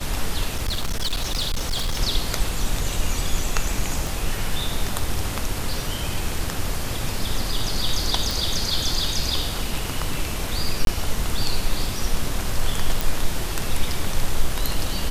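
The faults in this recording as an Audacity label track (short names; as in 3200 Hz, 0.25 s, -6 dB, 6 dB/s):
0.540000	2.000000	clipped -19.5 dBFS
4.070000	4.070000	pop
8.310000	8.310000	pop
10.850000	10.870000	gap 22 ms
13.010000	13.010000	pop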